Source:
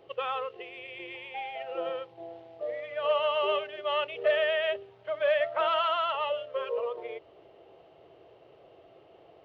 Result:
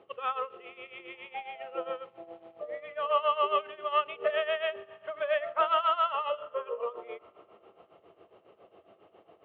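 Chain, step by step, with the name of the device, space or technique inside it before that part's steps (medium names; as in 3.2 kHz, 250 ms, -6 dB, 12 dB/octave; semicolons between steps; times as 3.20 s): 6.39–6.80 s: distance through air 400 m; combo amplifier with spring reverb and tremolo (spring tank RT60 3.5 s, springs 39 ms, chirp 45 ms, DRR 18.5 dB; tremolo 7.3 Hz, depth 79%; cabinet simulation 77–3500 Hz, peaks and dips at 130 Hz -9 dB, 210 Hz +8 dB, 1.2 kHz +8 dB)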